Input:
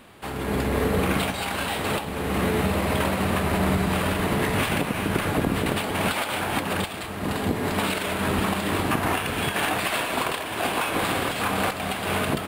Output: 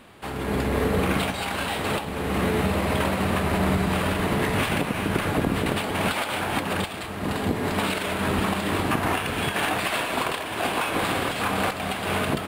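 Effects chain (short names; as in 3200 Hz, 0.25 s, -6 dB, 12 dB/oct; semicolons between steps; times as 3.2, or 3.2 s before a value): high shelf 10000 Hz -4.5 dB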